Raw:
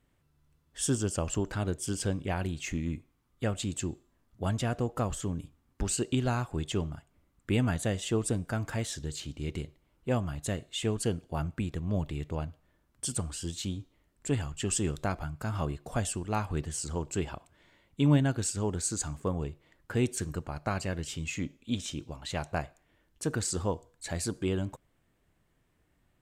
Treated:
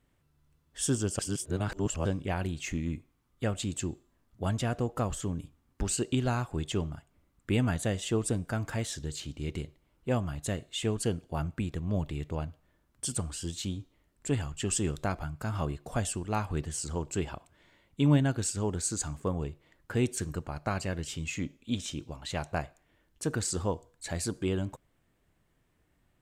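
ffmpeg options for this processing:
-filter_complex "[0:a]asplit=3[s0][s1][s2];[s0]atrim=end=1.192[s3];[s1]atrim=start=1.188:end=2.052,asetpts=PTS-STARTPTS,areverse[s4];[s2]atrim=start=2.048[s5];[s3][s4]acrossfade=d=0.004:c1=hsin:c2=hsin[s6];[s6][s5]acrossfade=d=0.004:c1=hsin:c2=hsin"

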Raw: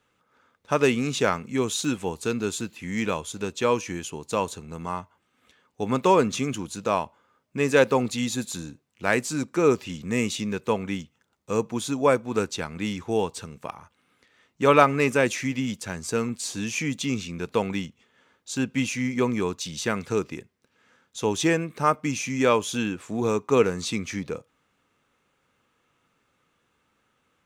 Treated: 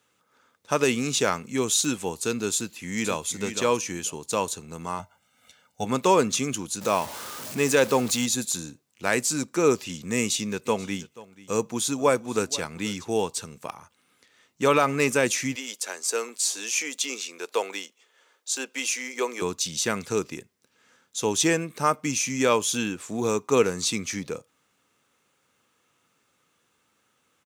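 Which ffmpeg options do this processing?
-filter_complex "[0:a]asplit=2[s0][s1];[s1]afade=t=in:st=2.55:d=0.01,afade=t=out:st=3.27:d=0.01,aecho=0:1:490|980:0.398107|0.0597161[s2];[s0][s2]amix=inputs=2:normalize=0,asettb=1/sr,asplit=3[s3][s4][s5];[s3]atrim=end=4.994[s6];[s4]atrim=start=4.99:end=5.85,asetpts=PTS-STARTPTS,afade=t=in:d=0.004:c=qsin,afade=t=out:st=0.856:d=0.004:c=qsin,aecho=1:1:1.4:0.97,atrim=end_sample=37926[s7];[s5]atrim=start=5.846[s8];[s6][s7]acrossfade=d=0.004:c1=hsin:c2=qsin[s9];[s9][s8]acrossfade=d=0.004:c1=qsin:c2=hsin,asettb=1/sr,asplit=3[s10][s11][s12];[s10]atrim=end=6.814[s13];[s11]atrim=start=6.81:end=8.26,asetpts=PTS-STARTPTS,afade=t=in:d=0.004:c=qsin,afade=t=out:st=1.446:d=0.004:c=qsin,aeval=exprs='val(0)+0.5*0.0211*sgn(val(0))':c=same[s14];[s12]atrim=start=8.256[s15];[s13][s14]acrossfade=d=0.004:c1=hsin:c2=qsin[s16];[s16][s15]acrossfade=d=0.004:c1=qsin:c2=hsin,asplit=3[s17][s18][s19];[s17]afade=t=out:st=10.65:d=0.02[s20];[s18]aecho=1:1:484:0.106,afade=t=in:st=10.65:d=0.02,afade=t=out:st=13.07:d=0.02[s21];[s19]afade=t=in:st=13.07:d=0.02[s22];[s20][s21][s22]amix=inputs=3:normalize=0,asettb=1/sr,asplit=3[s23][s24][s25];[s23]atrim=end=15.554[s26];[s24]atrim=start=15.55:end=19.42,asetpts=PTS-STARTPTS,afade=t=in:d=0.004:c=qsin,afade=t=out:st=3.866:d=0.004:c=qsin,highpass=f=380:w=0.5412,highpass=f=380:w=1.3066[s27];[s25]atrim=start=19.416[s28];[s26][s27]acrossfade=d=0.004:c1=hsin:c2=qsin[s29];[s29][s28]acrossfade=d=0.004:c1=qsin:c2=hsin,highpass=79,bass=f=250:g=-2,treble=f=4000:g=9,alimiter=level_in=2:limit=0.891:release=50:level=0:latency=1,volume=0.473"

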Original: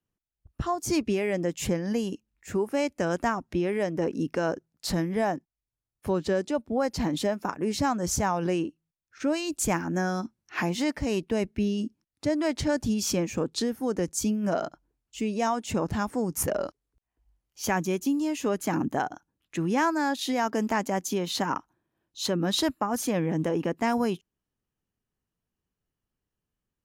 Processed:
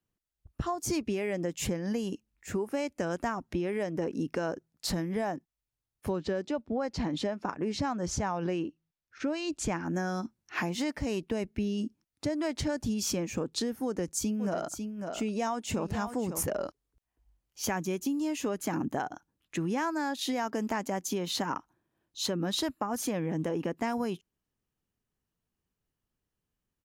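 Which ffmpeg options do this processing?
-filter_complex "[0:a]asettb=1/sr,asplit=3[s0][s1][s2];[s0]atrim=end=6.164[s3];[s1]atrim=start=6.16:end=9.86,asetpts=PTS-STARTPTS,afade=t=in:d=0.004:c=qsin,afade=t=out:st=3.696:d=0.004:c=qsin,lowpass=5300[s4];[s2]atrim=start=9.856[s5];[s3][s4]acrossfade=d=0.004:c1=hsin:c2=qsin[s6];[s6][s5]acrossfade=d=0.004:c1=qsin:c2=hsin,asplit=3[s7][s8][s9];[s7]afade=t=out:st=14.39:d=0.02[s10];[s8]aecho=1:1:548:0.299,afade=t=in:st=14.39:d=0.02,afade=t=out:st=16.46:d=0.02[s11];[s9]afade=t=in:st=16.46:d=0.02[s12];[s10][s11][s12]amix=inputs=3:normalize=0,acompressor=threshold=0.0355:ratio=3"

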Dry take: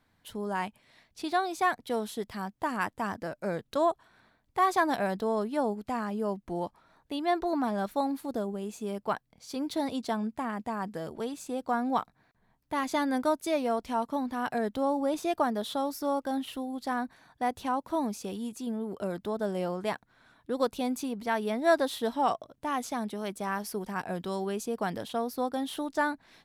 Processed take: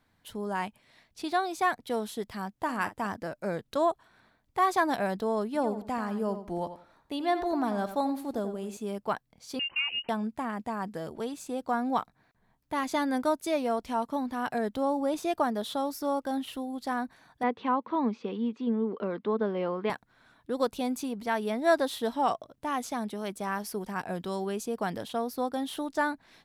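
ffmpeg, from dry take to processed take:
-filter_complex "[0:a]asettb=1/sr,asplit=3[s0][s1][s2];[s0]atrim=end=2.644[s3];[s1]atrim=start=2.64:end=3.07,asetpts=PTS-STARTPTS,afade=t=in:d=0.004:c=qsin,afade=t=out:st=0.426:d=0.004:c=qsin,asplit=2[s4][s5];[s5]adelay=46,volume=0.224[s6];[s4][s6]amix=inputs=2:normalize=0,atrim=end_sample=18963[s7];[s2]atrim=start=3.066[s8];[s3][s7]acrossfade=d=0.004:c1=hsin:c2=qsin[s9];[s9][s8]acrossfade=d=0.004:c1=qsin:c2=hsin,asettb=1/sr,asplit=3[s10][s11][s12];[s10]atrim=end=5.464[s13];[s11]atrim=start=5.46:end=8.77,asetpts=PTS-STARTPTS,afade=t=in:d=0.004:c=qsin,afade=t=out:st=3.306:d=0.004:c=qsin,asplit=2[s14][s15];[s15]adelay=88,lowpass=f=4700:p=1,volume=0.299,asplit=2[s16][s17];[s17]adelay=88,lowpass=f=4700:p=1,volume=0.24,asplit=2[s18][s19];[s19]adelay=88,lowpass=f=4700:p=1,volume=0.24[s20];[s14][s16][s18][s20]amix=inputs=4:normalize=0,atrim=end_sample=145971[s21];[s12]atrim=start=8.766[s22];[s13][s21]acrossfade=d=0.004:c1=hsin:c2=qsin[s23];[s23][s22]acrossfade=d=0.004:c1=qsin:c2=hsin,asettb=1/sr,asplit=3[s24][s25][s26];[s24]atrim=end=9.594[s27];[s25]atrim=start=9.59:end=10.09,asetpts=PTS-STARTPTS,afade=t=in:d=0.004:c=qsin,afade=t=out:st=0.496:d=0.004:c=qsin,lowpass=f=2600:t=q:w=0.5098,lowpass=f=2600:t=q:w=0.6013,lowpass=f=2600:t=q:w=0.9,lowpass=f=2600:t=q:w=2.563,afreqshift=-3100[s28];[s26]atrim=start=10.086[s29];[s27][s28]acrossfade=d=0.004:c1=hsin:c2=qsin[s30];[s30][s29]acrossfade=d=0.004:c1=qsin:c2=hsin,asettb=1/sr,asplit=3[s31][s32][s33];[s31]atrim=end=17.434[s34];[s32]atrim=start=17.43:end=19.9,asetpts=PTS-STARTPTS,afade=t=in:d=0.004:c=qsin,afade=t=out:st=2.466:d=0.004:c=qsin,highpass=200,equalizer=f=230:t=q:w=4:g=8,equalizer=f=460:t=q:w=4:g=8,equalizer=f=660:t=q:w=4:g=-6,equalizer=f=1100:t=q:w=4:g=7,equalizer=f=2100:t=q:w=4:g=4,lowpass=f=3600:w=0.5412,lowpass=f=3600:w=1.3066[s35];[s33]atrim=start=19.896[s36];[s34][s35]acrossfade=d=0.004:c1=hsin:c2=qsin[s37];[s37][s36]acrossfade=d=0.004:c1=qsin:c2=hsin"

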